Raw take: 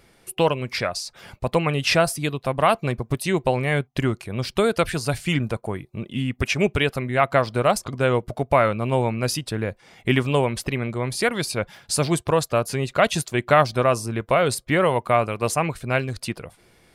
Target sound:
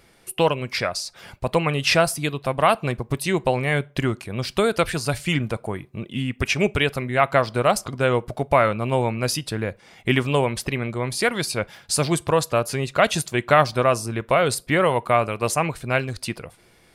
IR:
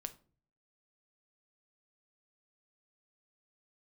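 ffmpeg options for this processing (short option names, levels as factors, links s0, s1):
-filter_complex "[0:a]asplit=2[s0][s1];[1:a]atrim=start_sample=2205,lowshelf=f=400:g=-12[s2];[s1][s2]afir=irnorm=-1:irlink=0,volume=0.596[s3];[s0][s3]amix=inputs=2:normalize=0,volume=0.841"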